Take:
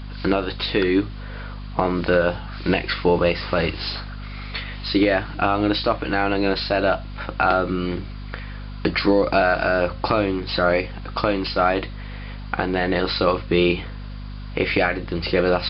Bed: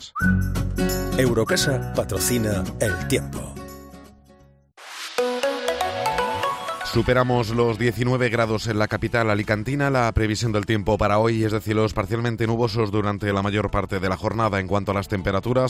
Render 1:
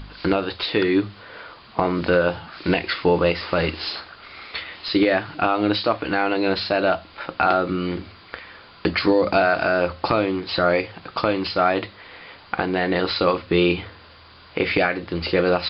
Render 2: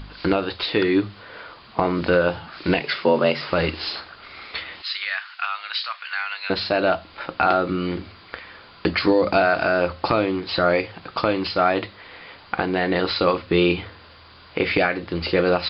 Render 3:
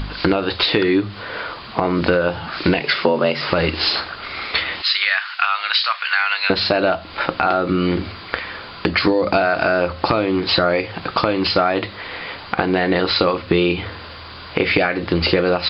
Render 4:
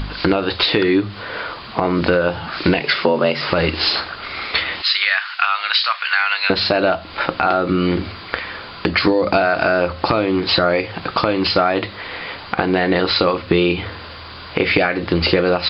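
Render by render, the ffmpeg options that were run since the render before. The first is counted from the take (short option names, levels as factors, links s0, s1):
-af "bandreject=f=50:t=h:w=4,bandreject=f=100:t=h:w=4,bandreject=f=150:t=h:w=4,bandreject=f=200:t=h:w=4,bandreject=f=250:t=h:w=4"
-filter_complex "[0:a]asettb=1/sr,asplit=3[s0][s1][s2];[s0]atrim=end=2.804[s3];[s1]atrim=start=2.8:end=3.5,asetpts=PTS-STARTPTS,afade=t=in:d=0.004:c=qsin,afade=t=out:st=0.696:d=0.004:c=qsin,afreqshift=63[s4];[s2]atrim=start=3.496[s5];[s3][s4]acrossfade=d=0.004:c1=hsin:c2=qsin[s6];[s6][s5]acrossfade=d=0.004:c1=qsin:c2=hsin,asettb=1/sr,asplit=3[s7][s8][s9];[s7]atrim=end=4.824[s10];[s8]atrim=start=4.82:end=6.5,asetpts=PTS-STARTPTS,afade=t=in:d=0.004:c=qsin,afade=t=out:st=1.676:d=0.004:c=qsin,highpass=f=1300:w=0.5412,highpass=f=1300:w=1.3066[s11];[s9]atrim=start=6.496[s12];[s10][s11]acrossfade=d=0.004:c1=hsin:c2=qsin[s13];[s13][s12]acrossfade=d=0.004:c1=qsin:c2=hsin"
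-af "acompressor=threshold=0.0562:ratio=6,alimiter=level_in=3.76:limit=0.891:release=50:level=0:latency=1"
-af "volume=1.12,alimiter=limit=0.891:level=0:latency=1"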